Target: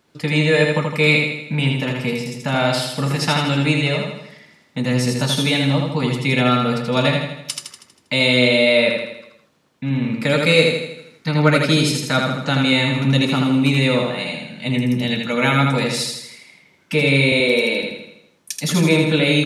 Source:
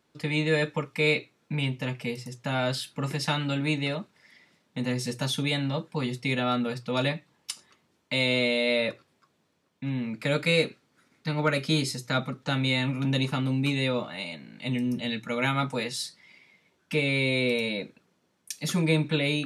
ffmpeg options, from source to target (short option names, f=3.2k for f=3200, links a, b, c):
-filter_complex "[0:a]asettb=1/sr,asplit=3[a][b][c];[a]atrim=end=17.324[d];[b]atrim=start=17.32:end=17.83,asetpts=PTS-STARTPTS,afade=t=in:d=0.004:c=qsin,afade=t=out:st=0.506:d=0.004:c=qsin,highpass=f=250:w=0.5412,highpass=f=250:w=1.3066[e];[c]atrim=start=17.826[f];[d][e]acrossfade=d=0.004:c1=hsin:c2=qsin[g];[g][f]acrossfade=d=0.004:c1=qsin:c2=hsin,asplit=2[h][i];[i]aecho=0:1:80|160|240|320|400|480|560:0.668|0.348|0.181|0.094|0.0489|0.0254|0.0132[j];[h][j]amix=inputs=2:normalize=0,volume=8dB"